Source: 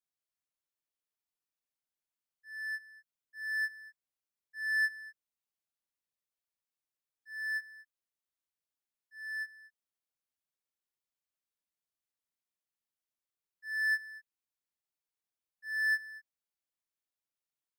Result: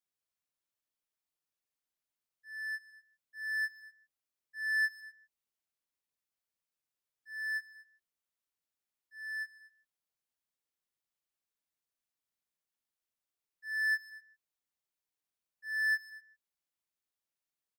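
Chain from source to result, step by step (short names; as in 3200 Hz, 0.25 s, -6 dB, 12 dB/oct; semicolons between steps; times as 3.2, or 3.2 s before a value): speakerphone echo 0.15 s, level -16 dB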